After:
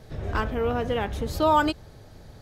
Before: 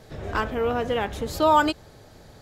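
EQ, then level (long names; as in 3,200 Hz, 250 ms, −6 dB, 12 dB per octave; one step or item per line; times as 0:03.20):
low-shelf EQ 160 Hz +8.5 dB
notch filter 7,300 Hz, Q 13
−2.5 dB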